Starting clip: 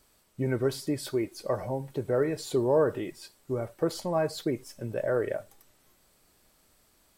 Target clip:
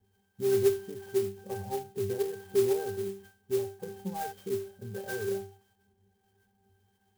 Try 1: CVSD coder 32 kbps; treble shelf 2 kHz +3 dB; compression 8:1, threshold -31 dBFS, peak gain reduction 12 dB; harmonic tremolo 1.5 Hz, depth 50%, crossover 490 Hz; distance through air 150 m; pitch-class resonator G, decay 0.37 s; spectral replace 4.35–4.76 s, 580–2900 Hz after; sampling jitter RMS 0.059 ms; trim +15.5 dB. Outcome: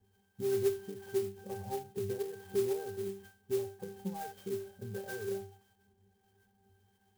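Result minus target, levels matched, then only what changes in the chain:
compression: peak gain reduction +6.5 dB
change: compression 8:1, threshold -23.5 dBFS, peak gain reduction 5.5 dB

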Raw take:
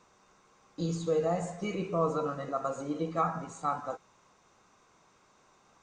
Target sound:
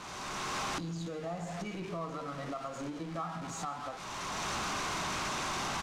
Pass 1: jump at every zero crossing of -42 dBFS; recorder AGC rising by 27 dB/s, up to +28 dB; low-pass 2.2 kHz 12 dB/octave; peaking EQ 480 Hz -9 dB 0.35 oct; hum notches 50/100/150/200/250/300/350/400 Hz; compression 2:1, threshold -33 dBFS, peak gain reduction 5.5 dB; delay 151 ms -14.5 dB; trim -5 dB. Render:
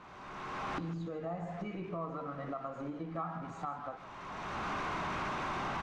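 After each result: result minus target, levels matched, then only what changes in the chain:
8 kHz band -16.0 dB; echo-to-direct +7.5 dB; jump at every zero crossing: distortion -6 dB
change: low-pass 6.7 kHz 12 dB/octave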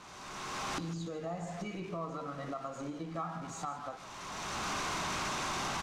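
echo-to-direct +7.5 dB; jump at every zero crossing: distortion -6 dB
change: delay 151 ms -22 dB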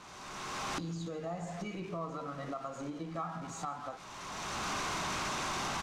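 jump at every zero crossing: distortion -6 dB
change: jump at every zero crossing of -34.5 dBFS

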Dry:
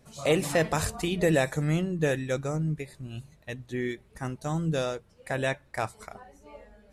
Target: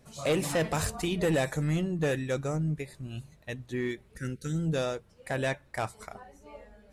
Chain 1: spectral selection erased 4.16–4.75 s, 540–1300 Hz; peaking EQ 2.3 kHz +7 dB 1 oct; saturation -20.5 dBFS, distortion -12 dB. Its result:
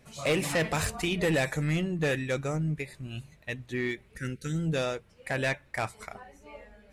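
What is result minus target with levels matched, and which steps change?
2 kHz band +3.5 dB
remove: peaking EQ 2.3 kHz +7 dB 1 oct

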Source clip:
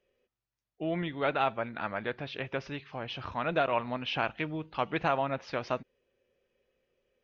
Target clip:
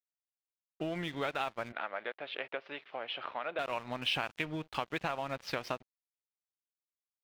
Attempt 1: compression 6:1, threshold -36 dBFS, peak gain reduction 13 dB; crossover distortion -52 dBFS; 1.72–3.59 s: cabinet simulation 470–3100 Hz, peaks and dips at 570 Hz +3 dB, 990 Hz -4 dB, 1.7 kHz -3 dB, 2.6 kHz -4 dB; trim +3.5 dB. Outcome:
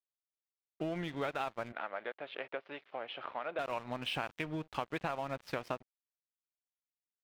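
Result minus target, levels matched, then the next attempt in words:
4 kHz band -3.5 dB
compression 6:1, threshold -36 dBFS, peak gain reduction 13 dB; treble shelf 2.2 kHz +8 dB; crossover distortion -52 dBFS; 1.72–3.59 s: cabinet simulation 470–3100 Hz, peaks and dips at 570 Hz +3 dB, 990 Hz -4 dB, 1.7 kHz -3 dB, 2.6 kHz -4 dB; trim +3.5 dB

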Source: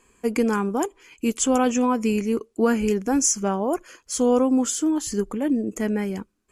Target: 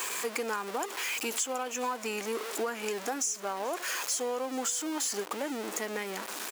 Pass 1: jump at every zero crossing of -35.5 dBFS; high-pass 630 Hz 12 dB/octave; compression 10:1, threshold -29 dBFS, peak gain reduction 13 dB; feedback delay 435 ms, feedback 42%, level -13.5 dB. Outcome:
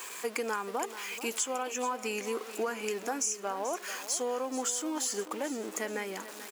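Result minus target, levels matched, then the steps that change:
echo-to-direct +10 dB; jump at every zero crossing: distortion -8 dB
change: jump at every zero crossing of -27 dBFS; change: feedback delay 435 ms, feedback 42%, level -23.5 dB

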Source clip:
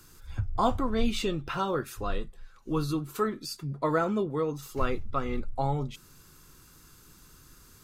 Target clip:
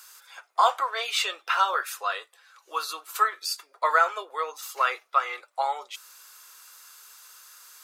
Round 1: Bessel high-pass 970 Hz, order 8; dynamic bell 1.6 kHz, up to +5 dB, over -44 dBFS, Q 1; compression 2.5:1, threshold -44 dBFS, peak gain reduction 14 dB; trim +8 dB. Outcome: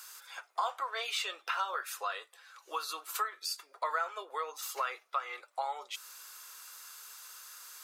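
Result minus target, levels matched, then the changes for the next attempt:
compression: peak gain reduction +14 dB
remove: compression 2.5:1, threshold -44 dBFS, peak gain reduction 14 dB

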